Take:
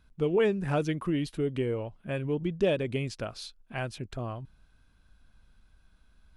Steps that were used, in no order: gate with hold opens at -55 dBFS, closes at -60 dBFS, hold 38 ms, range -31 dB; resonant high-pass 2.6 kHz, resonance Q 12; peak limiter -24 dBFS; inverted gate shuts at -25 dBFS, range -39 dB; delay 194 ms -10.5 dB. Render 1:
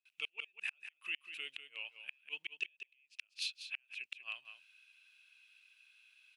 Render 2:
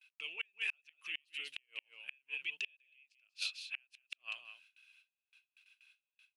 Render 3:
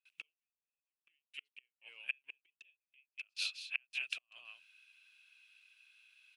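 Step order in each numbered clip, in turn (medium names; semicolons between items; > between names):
gate with hold > resonant high-pass > peak limiter > inverted gate > delay; delay > peak limiter > resonant high-pass > gate with hold > inverted gate; peak limiter > delay > inverted gate > gate with hold > resonant high-pass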